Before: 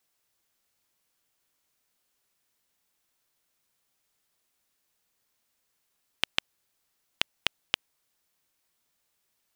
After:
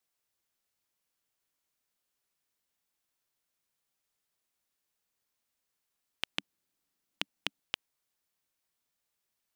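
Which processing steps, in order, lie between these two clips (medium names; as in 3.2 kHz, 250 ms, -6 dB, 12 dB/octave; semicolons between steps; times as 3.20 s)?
6.32–7.60 s: small resonant body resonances 200/280 Hz, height 9 dB; trim -7.5 dB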